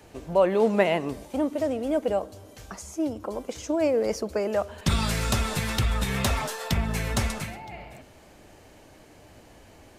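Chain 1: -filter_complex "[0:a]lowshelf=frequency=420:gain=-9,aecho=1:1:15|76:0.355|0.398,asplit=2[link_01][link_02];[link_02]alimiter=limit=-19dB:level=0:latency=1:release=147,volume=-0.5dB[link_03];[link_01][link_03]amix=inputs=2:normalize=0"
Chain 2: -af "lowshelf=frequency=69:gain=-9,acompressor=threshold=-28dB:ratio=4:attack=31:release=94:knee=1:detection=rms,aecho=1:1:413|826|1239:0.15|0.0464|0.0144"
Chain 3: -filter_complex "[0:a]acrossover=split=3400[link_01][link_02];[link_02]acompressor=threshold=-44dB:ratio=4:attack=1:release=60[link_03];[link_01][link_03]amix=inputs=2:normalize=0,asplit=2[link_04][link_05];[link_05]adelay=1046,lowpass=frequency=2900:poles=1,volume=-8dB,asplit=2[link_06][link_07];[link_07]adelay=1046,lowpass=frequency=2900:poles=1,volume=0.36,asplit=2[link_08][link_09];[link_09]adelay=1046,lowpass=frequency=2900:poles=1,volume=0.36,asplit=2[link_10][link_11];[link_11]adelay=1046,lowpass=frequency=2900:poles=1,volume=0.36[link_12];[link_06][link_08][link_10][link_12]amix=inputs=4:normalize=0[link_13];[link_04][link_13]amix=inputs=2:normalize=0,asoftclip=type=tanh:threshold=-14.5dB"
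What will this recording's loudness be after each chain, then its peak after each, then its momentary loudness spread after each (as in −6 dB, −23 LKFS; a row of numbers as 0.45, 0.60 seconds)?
−24.5, −31.0, −28.0 LKFS; −5.5, −14.5, −14.5 dBFS; 12, 12, 17 LU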